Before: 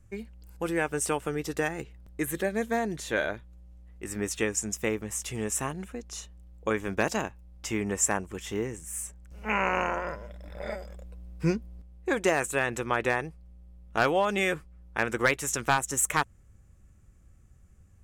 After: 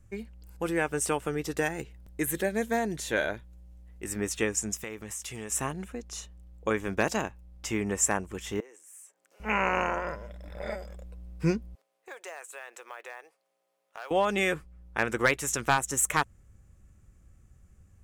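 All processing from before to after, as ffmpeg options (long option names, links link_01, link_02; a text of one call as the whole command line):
ffmpeg -i in.wav -filter_complex "[0:a]asettb=1/sr,asplit=3[link_01][link_02][link_03];[link_01]atrim=end=1.584[link_04];[link_02]atrim=start=1.58:end=4.14,asetpts=PTS-STARTPTS,afade=type=in:duration=0.004:curve=qsin,afade=type=out:start_time=2.556:duration=0.004:curve=qsin,highshelf=frequency=6500:gain=5,bandreject=frequency=1200:width=12[link_05];[link_03]atrim=start=4.136[link_06];[link_04][link_05]acrossfade=duration=0.004:curve1=hsin:curve2=qsin[link_07];[link_07][link_06]acrossfade=duration=0.004:curve1=qsin:curve2=hsin,asettb=1/sr,asplit=3[link_08][link_09][link_10];[link_08]atrim=end=4.764[link_11];[link_09]atrim=start=4.76:end=5.51,asetpts=PTS-STARTPTS,afade=type=in:duration=0.004:curve=qsin,afade=type=out:start_time=0.746:duration=0.004:curve=qsin,tiltshelf=frequency=810:gain=-3.5,acompressor=threshold=-36dB:ratio=3:attack=3.2:release=140:knee=1:detection=peak[link_12];[link_10]atrim=start=5.506[link_13];[link_11][link_12]acrossfade=duration=0.004:curve1=hsin:curve2=qsin[link_14];[link_14][link_13]acrossfade=duration=0.004:curve1=qsin:curve2=hsin,asettb=1/sr,asplit=3[link_15][link_16][link_17];[link_15]atrim=end=8.604[link_18];[link_16]atrim=start=8.6:end=9.4,asetpts=PTS-STARTPTS,afade=type=in:duration=0.004:curve=qsin,afade=type=out:start_time=0.796:duration=0.004:curve=qsin,highpass=frequency=400:width=0.5412,highpass=frequency=400:width=1.3066,acompressor=threshold=-59dB:ratio=2:attack=3.2:release=140:knee=1:detection=peak[link_19];[link_17]atrim=start=9.396[link_20];[link_18][link_19]acrossfade=duration=0.004:curve1=hsin:curve2=qsin[link_21];[link_21][link_20]acrossfade=duration=0.004:curve1=qsin:curve2=hsin,asettb=1/sr,asplit=3[link_22][link_23][link_24];[link_22]atrim=end=11.754[link_25];[link_23]atrim=start=11.75:end=14.11,asetpts=PTS-STARTPTS,afade=type=in:duration=0.004:curve=qsin,afade=type=out:start_time=2.356:duration=0.004:curve=qsin,highpass=frequency=510:width=0.5412,highpass=frequency=510:width=1.3066,acompressor=threshold=-51dB:ratio=2:attack=3.2:release=140:knee=1:detection=peak,acrusher=bits=6:mode=log:mix=0:aa=0.000001[link_26];[link_24]atrim=start=14.106[link_27];[link_25][link_26]acrossfade=duration=0.004:curve1=hsin:curve2=qsin[link_28];[link_28][link_27]acrossfade=duration=0.004:curve1=qsin:curve2=hsin" out.wav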